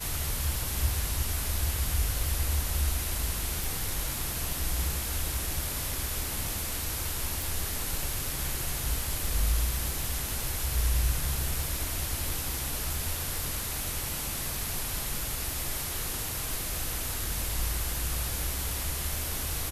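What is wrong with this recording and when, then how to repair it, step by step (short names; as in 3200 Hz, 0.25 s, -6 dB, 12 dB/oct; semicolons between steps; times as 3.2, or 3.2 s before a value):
crackle 28/s -37 dBFS
3.64 pop
7.42 pop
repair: de-click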